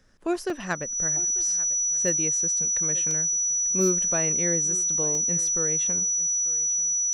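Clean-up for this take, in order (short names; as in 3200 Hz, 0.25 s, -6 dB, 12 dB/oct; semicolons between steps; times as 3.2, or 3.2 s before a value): clip repair -14 dBFS; notch 5900 Hz, Q 30; interpolate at 0.5/3.11/5.15, 1.6 ms; inverse comb 0.893 s -19.5 dB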